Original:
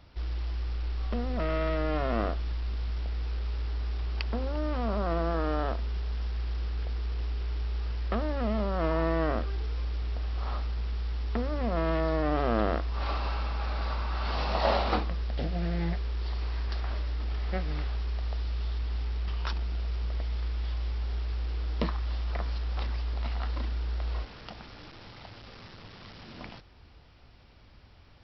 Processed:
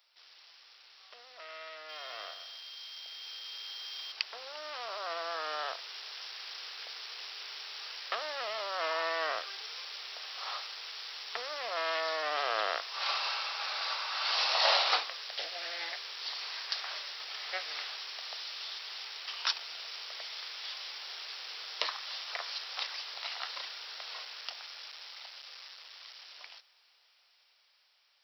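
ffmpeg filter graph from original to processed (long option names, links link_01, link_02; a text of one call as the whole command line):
ffmpeg -i in.wav -filter_complex "[0:a]asettb=1/sr,asplit=3[link_01][link_02][link_03];[link_01]atrim=end=1.894[link_04];[link_02]atrim=start=1.89:end=4.12,asetpts=PTS-STARTPTS,afade=type=in:duration=0.004:curve=qsin,afade=type=out:start_time=2.226:duration=0.004:curve=qsin,highshelf=frequency=4900:gain=11.5,aeval=exprs='val(0)+0.00501*sin(2*PI*3200*n/s)':channel_layout=same,aecho=1:1:124|248|372|496:0.316|0.123|0.0481|0.0188,atrim=end_sample=98343[link_05];[link_03]atrim=start=4.116[link_06];[link_04][link_05]acrossfade=duration=0.004:curve1=hsin:curve2=qsin[link_07];[link_07][link_06]acrossfade=duration=0.004:curve1=qsin:curve2=hsin,highpass=frequency=480:width=0.5412,highpass=frequency=480:width=1.3066,aderivative,dynaudnorm=framelen=990:gausssize=9:maxgain=14dB,volume=2dB" out.wav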